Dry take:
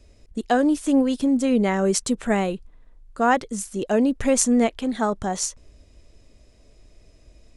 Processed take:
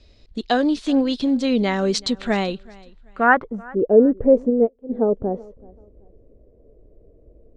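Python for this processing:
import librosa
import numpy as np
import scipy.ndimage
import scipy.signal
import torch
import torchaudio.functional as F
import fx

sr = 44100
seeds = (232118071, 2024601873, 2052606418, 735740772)

p1 = fx.filter_sweep_lowpass(x, sr, from_hz=4100.0, to_hz=470.0, start_s=3.01, end_s=3.71, q=3.8)
p2 = p1 + fx.echo_feedback(p1, sr, ms=381, feedback_pct=29, wet_db=-23.5, dry=0)
y = fx.upward_expand(p2, sr, threshold_db=-24.0, expansion=2.5, at=(4.49, 4.89), fade=0.02)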